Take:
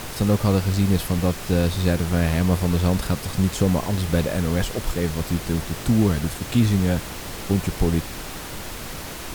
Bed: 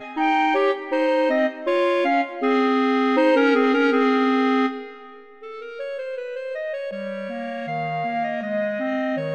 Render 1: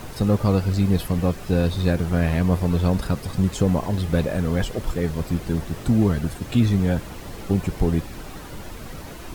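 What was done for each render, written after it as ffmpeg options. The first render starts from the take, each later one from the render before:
-af "afftdn=nr=9:nf=-34"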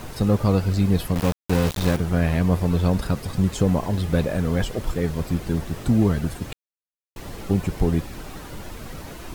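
-filter_complex "[0:a]asettb=1/sr,asplit=3[a][b][c];[a]atrim=end=1.154[d];[b]atrim=start=1.15:end=1.97,asetpts=PTS-STARTPTS,afade=t=in:d=0.004:c=qsin,afade=t=out:st=0.816:d=0.004:c=qsin,aeval=exprs='val(0)*gte(abs(val(0)),0.075)':c=same[e];[c]atrim=start=1.966[f];[d][e]acrossfade=d=0.004:c1=hsin:c2=qsin[g];[g][f]acrossfade=d=0.004:c1=qsin:c2=hsin,asplit=3[h][i][j];[h]atrim=end=6.53,asetpts=PTS-STARTPTS,afade=t=out:st=6.526:d=0.004:c=hsin[k];[i]atrim=start=6.53:end=7.16,asetpts=PTS-STARTPTS,volume=0[l];[j]atrim=start=7.16,asetpts=PTS-STARTPTS,afade=t=in:d=0.004:c=hsin[m];[k][l][m]concat=n=3:v=0:a=1"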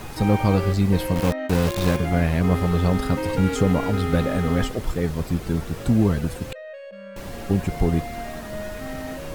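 -filter_complex "[1:a]volume=-10dB[a];[0:a][a]amix=inputs=2:normalize=0"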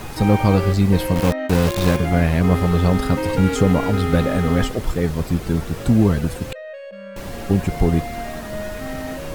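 -af "volume=3.5dB"

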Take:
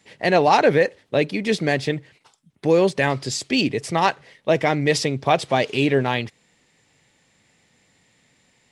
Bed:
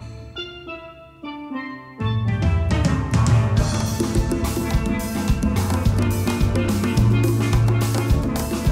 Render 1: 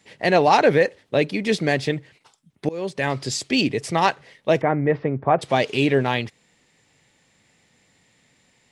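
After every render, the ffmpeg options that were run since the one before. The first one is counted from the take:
-filter_complex "[0:a]asplit=3[a][b][c];[a]afade=t=out:st=4.6:d=0.02[d];[b]lowpass=f=1.7k:w=0.5412,lowpass=f=1.7k:w=1.3066,afade=t=in:st=4.6:d=0.02,afade=t=out:st=5.41:d=0.02[e];[c]afade=t=in:st=5.41:d=0.02[f];[d][e][f]amix=inputs=3:normalize=0,asplit=2[g][h];[g]atrim=end=2.69,asetpts=PTS-STARTPTS,afade=t=out:st=2.686:d=0.004:c=hsin:silence=0.0668344[i];[h]atrim=start=2.69,asetpts=PTS-STARTPTS,afade=t=in:d=0.54:silence=0.0668344[j];[i][j]concat=n=2:v=0:a=1"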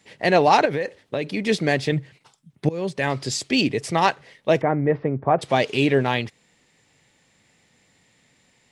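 -filter_complex "[0:a]asettb=1/sr,asplit=3[a][b][c];[a]atrim=end=0.654[d];[b]atrim=start=0.65:end=1.37,asetpts=PTS-STARTPTS,afade=t=in:d=0.004:c=qsin,afade=t=out:st=0.716:d=0.004:c=qsin,acompressor=threshold=-20dB:ratio=6:attack=3.2:release=140:knee=1:detection=peak[e];[c]atrim=start=1.366[f];[d][e]acrossfade=d=0.004:c1=hsin:c2=qsin[g];[g][f]acrossfade=d=0.004:c1=qsin:c2=hsin,asettb=1/sr,asplit=3[h][i][j];[h]atrim=end=1.924[k];[i]atrim=start=1.92:end=2.95,asetpts=PTS-STARTPTS,afade=t=in:d=0.004:c=qsin,afade=t=out:st=1.026:d=0.004:c=qsin,equalizer=f=140:w=1.5:g=8[l];[j]atrim=start=2.946[m];[k][l]acrossfade=d=0.004:c1=hsin:c2=qsin[n];[n][m]acrossfade=d=0.004:c1=qsin:c2=hsin,asettb=1/sr,asplit=3[o][p][q];[o]atrim=end=4.634[r];[p]atrim=start=4.63:end=5.38,asetpts=PTS-STARTPTS,afade=t=in:d=0.004:c=qsin,afade=t=out:st=0.746:d=0.004:c=qsin,highshelf=f=2.3k:g=-8.5[s];[q]atrim=start=5.376[t];[r][s]acrossfade=d=0.004:c1=hsin:c2=qsin[u];[u][t]acrossfade=d=0.004:c1=qsin:c2=hsin"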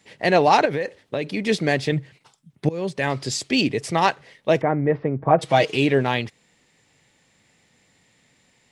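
-filter_complex "[0:a]asettb=1/sr,asplit=3[a][b][c];[a]atrim=end=5.204[d];[b]atrim=start=5.2:end=5.76,asetpts=PTS-STARTPTS,afade=t=in:d=0.004:c=qsin,afade=t=out:st=0.556:d=0.004:c=qsin,aecho=1:1:6.3:0.7,atrim=end_sample=24696[e];[c]atrim=start=5.756[f];[d][e]acrossfade=d=0.004:c1=hsin:c2=qsin[g];[g][f]acrossfade=d=0.004:c1=qsin:c2=hsin"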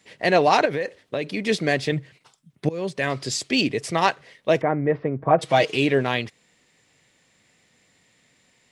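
-af "lowshelf=f=240:g=-4,bandreject=f=850:w=12"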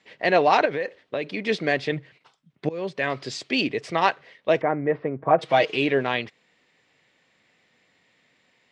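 -af "lowpass=3.8k,lowshelf=f=160:g=-11.5"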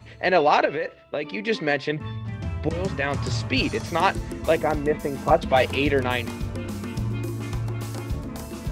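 -filter_complex "[1:a]volume=-11dB[a];[0:a][a]amix=inputs=2:normalize=0"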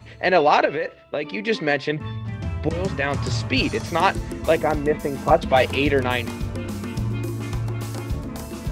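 -af "volume=2dB"

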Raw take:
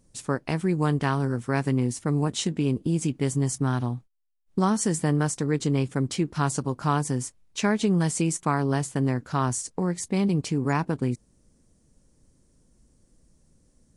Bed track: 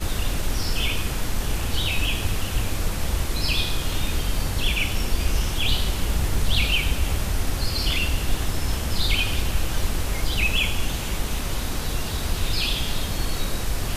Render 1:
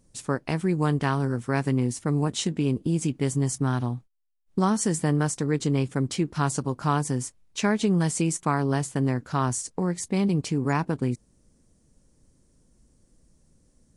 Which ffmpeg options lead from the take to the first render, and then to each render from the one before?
-af anull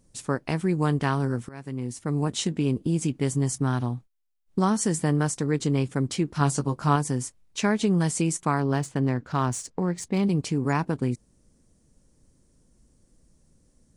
-filter_complex "[0:a]asettb=1/sr,asplit=3[a][b][c];[a]atrim=end=6.394[d];[b]atrim=start=6.39:end=6.96,asetpts=PTS-STARTPTS,afade=t=in:d=0.004:c=qsin,afade=t=out:st=0.566:d=0.004:c=qsin,asplit=2[e][f];[f]adelay=14,volume=-6dB[g];[e][g]amix=inputs=2:normalize=0,atrim=end_sample=25137[h];[c]atrim=start=6.956[i];[d][h]acrossfade=d=0.004:c1=hsin:c2=qsin[j];[j][i]acrossfade=d=0.004:c1=qsin:c2=hsin,asettb=1/sr,asplit=3[k][l][m];[k]atrim=end=8.604[n];[l]atrim=start=8.6:end=10.23,asetpts=PTS-STARTPTS,afade=t=in:d=0.004:c=qsin,afade=t=out:st=1.626:d=0.004:c=qsin,adynamicsmooth=sensitivity=7:basefreq=5.2k[o];[m]atrim=start=10.226[p];[n][o]acrossfade=d=0.004:c1=hsin:c2=qsin[q];[q][p]acrossfade=d=0.004:c1=qsin:c2=hsin,asplit=2[r][s];[r]atrim=end=1.49,asetpts=PTS-STARTPTS,afade=t=out:st=1.486:d=0.004:c=hsin:silence=0.0794328[t];[s]atrim=start=1.49,asetpts=PTS-STARTPTS,afade=t=in:d=0.83:silence=0.0794328[u];[t][u]concat=n=2:v=0:a=1"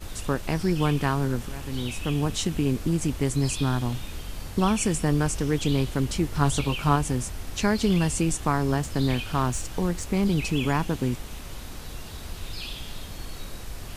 -filter_complex "[1:a]volume=-11.5dB[a];[0:a][a]amix=inputs=2:normalize=0"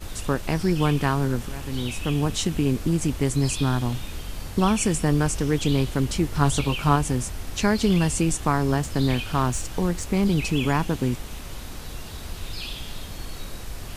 -af "volume=2dB"

